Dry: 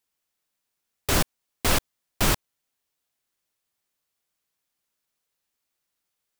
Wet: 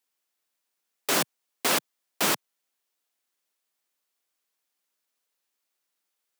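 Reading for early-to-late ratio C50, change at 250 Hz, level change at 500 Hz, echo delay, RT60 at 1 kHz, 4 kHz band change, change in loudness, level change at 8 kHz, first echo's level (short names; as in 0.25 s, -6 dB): none, -4.0 dB, -1.0 dB, none, none, 0.0 dB, -1.0 dB, 0.0 dB, none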